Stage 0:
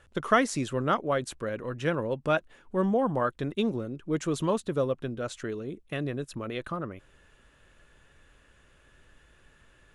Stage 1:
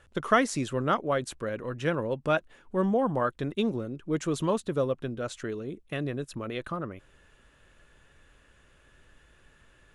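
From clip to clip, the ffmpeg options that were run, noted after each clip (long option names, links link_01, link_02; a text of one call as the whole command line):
ffmpeg -i in.wav -af anull out.wav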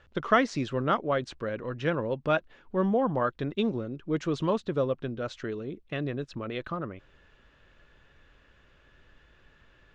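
ffmpeg -i in.wav -af "lowpass=frequency=5300:width=0.5412,lowpass=frequency=5300:width=1.3066" out.wav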